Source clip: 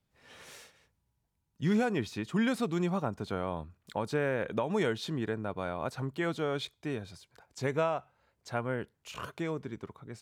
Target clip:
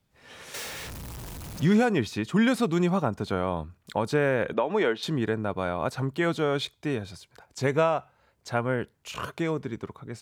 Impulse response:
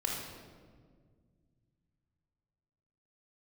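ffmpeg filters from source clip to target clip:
-filter_complex "[0:a]asettb=1/sr,asplit=3[s0][s1][s2];[s0]atrim=end=0.544[s3];[s1]atrim=start=0.54:end=1.66,asetpts=PTS-STARTPTS,afade=t=in:d=0.004:c=qsin,afade=t=out:st=1.116:d=0.004:c=qsin,aeval=exprs='val(0)+0.5*0.0112*sgn(val(0))':c=same[s4];[s2]atrim=start=1.656[s5];[s3][s4]acrossfade=d=0.004:c1=hsin:c2=qsin[s6];[s6][s5]acrossfade=d=0.004:c1=qsin:c2=hsin,asettb=1/sr,asplit=3[s7][s8][s9];[s7]atrim=end=4.534[s10];[s8]atrim=start=4.53:end=5.03,asetpts=PTS-STARTPTS,afade=t=in:d=0.004:c=qsin,afade=t=out:st=0.496:d=0.004:c=qsin,acrossover=split=230 4000:gain=0.0794 1 0.158[s11][s12][s13];[s11][s12][s13]amix=inputs=3:normalize=0[s14];[s9]atrim=start=5.026[s15];[s10][s14]acrossfade=d=0.004:c1=hsin:c2=qsin[s16];[s16][s15]acrossfade=d=0.004:c1=qsin:c2=hsin,volume=2.11"

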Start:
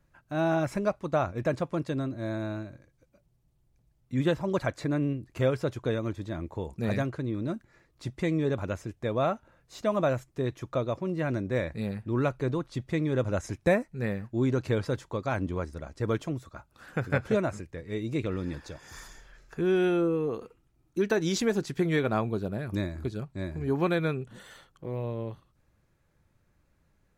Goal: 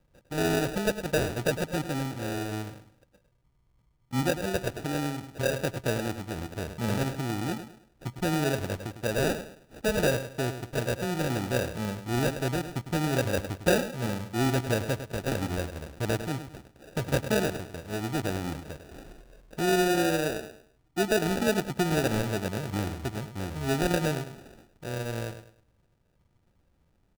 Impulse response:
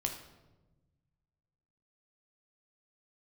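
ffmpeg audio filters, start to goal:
-filter_complex "[0:a]asettb=1/sr,asplit=3[s0][s1][s2];[s0]atrim=end=4.234[s3];[s1]atrim=start=4.23:end=5.58,asetpts=PTS-STARTPTS,afade=t=in:d=0.004:c=qsin,afade=t=out:st=1.346:d=0.004:c=qsin,acrossover=split=370[s4][s5];[s4]acompressor=threshold=0.0251:ratio=6[s6];[s6][s5]amix=inputs=2:normalize=0[s7];[s2]atrim=start=5.576[s8];[s3][s7]acrossfade=d=0.004:c1=hsin:c2=qsin[s9];[s9][s8]acrossfade=d=0.004:c1=qsin:c2=hsin,asplit=2[s10][s11];[s11]adelay=103,lowpass=f=2700:p=1,volume=0.316,asplit=2[s12][s13];[s13]adelay=103,lowpass=f=2700:p=1,volume=0.32,asplit=2[s14][s15];[s15]adelay=103,lowpass=f=2700:p=1,volume=0.32,asplit=2[s16][s17];[s17]adelay=103,lowpass=f=2700:p=1,volume=0.32[s18];[s10][s12][s14][s16][s18]amix=inputs=5:normalize=0,acrusher=samples=41:mix=1:aa=0.000001"

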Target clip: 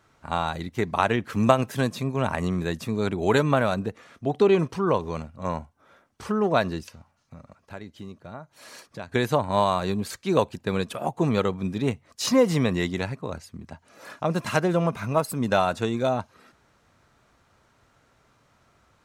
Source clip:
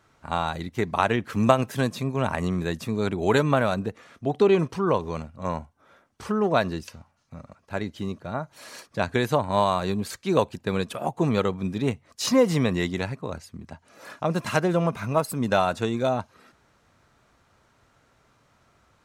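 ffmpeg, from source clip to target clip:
-filter_complex "[0:a]asettb=1/sr,asplit=3[s0][s1][s2];[s0]atrim=end=6.814[s3];[s1]atrim=start=6.81:end=9.12,asetpts=PTS-STARTPTS,afade=t=in:d=0.004:c=qsin,afade=t=out:st=2.306:d=0.004:c=qsin,acompressor=threshold=0.00708:ratio=2[s4];[s2]atrim=start=9.116[s5];[s3][s4]acrossfade=d=0.004:c1=hsin:c2=qsin[s6];[s6][s5]acrossfade=d=0.004:c1=qsin:c2=hsin"

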